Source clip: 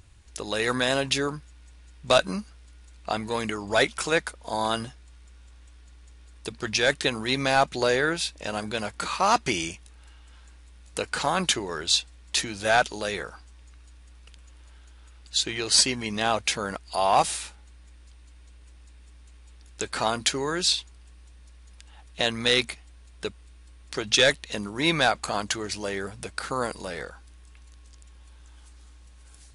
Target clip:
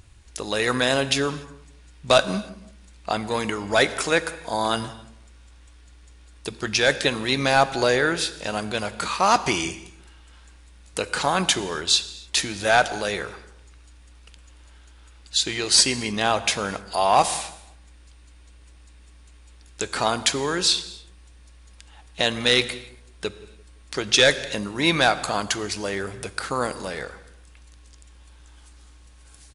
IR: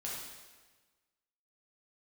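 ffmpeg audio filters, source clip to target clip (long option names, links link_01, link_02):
-filter_complex "[0:a]asplit=2[link_01][link_02];[link_02]adelay=171,lowpass=frequency=1200:poles=1,volume=-19dB,asplit=2[link_03][link_04];[link_04]adelay=171,lowpass=frequency=1200:poles=1,volume=0.37,asplit=2[link_05][link_06];[link_06]adelay=171,lowpass=frequency=1200:poles=1,volume=0.37[link_07];[link_01][link_03][link_05][link_07]amix=inputs=4:normalize=0,asplit=2[link_08][link_09];[1:a]atrim=start_sample=2205,afade=type=out:start_time=0.27:duration=0.01,atrim=end_sample=12348,asetrate=33075,aresample=44100[link_10];[link_09][link_10]afir=irnorm=-1:irlink=0,volume=-14.5dB[link_11];[link_08][link_11]amix=inputs=2:normalize=0,volume=2dB"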